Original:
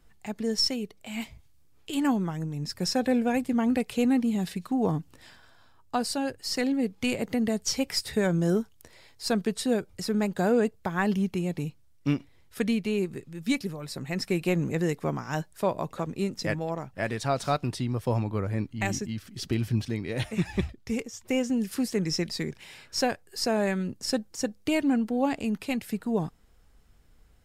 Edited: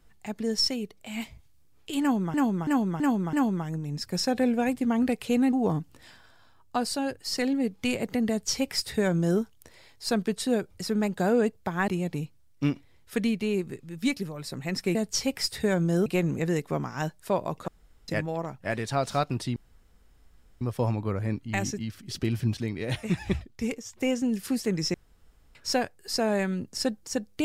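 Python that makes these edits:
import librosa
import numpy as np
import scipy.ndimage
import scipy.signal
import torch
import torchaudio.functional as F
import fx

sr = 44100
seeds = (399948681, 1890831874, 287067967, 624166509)

y = fx.edit(x, sr, fx.repeat(start_s=2.01, length_s=0.33, count=5),
    fx.cut(start_s=4.21, length_s=0.51),
    fx.duplicate(start_s=7.48, length_s=1.11, to_s=14.39),
    fx.cut(start_s=11.07, length_s=0.25),
    fx.room_tone_fill(start_s=16.01, length_s=0.4),
    fx.insert_room_tone(at_s=17.89, length_s=1.05),
    fx.room_tone_fill(start_s=22.22, length_s=0.61), tone=tone)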